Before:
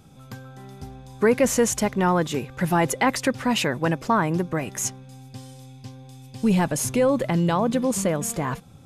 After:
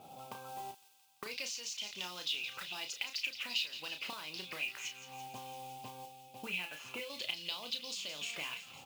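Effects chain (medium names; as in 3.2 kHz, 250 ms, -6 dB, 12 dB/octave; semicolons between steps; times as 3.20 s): 6.05–7.10 s: feedback comb 170 Hz, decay 0.28 s, harmonics all, mix 70%; auto-wah 710–4900 Hz, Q 3.5, up, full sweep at -18.5 dBFS; 0.71–1.25 s: gate -43 dBFS, range -37 dB; compression 6:1, threshold -53 dBFS, peak gain reduction 22 dB; distance through air 120 m; modulation noise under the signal 18 dB; resonant high shelf 2.2 kHz +6.5 dB, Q 3; doubling 33 ms -7 dB; feedback echo behind a high-pass 170 ms, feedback 70%, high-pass 2.8 kHz, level -10.5 dB; trim +11 dB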